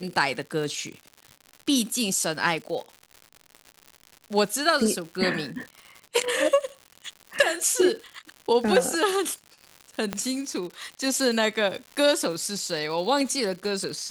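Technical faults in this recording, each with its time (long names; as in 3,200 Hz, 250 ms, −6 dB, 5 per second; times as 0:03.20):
surface crackle 150 per second −34 dBFS
0:10.13: click −12 dBFS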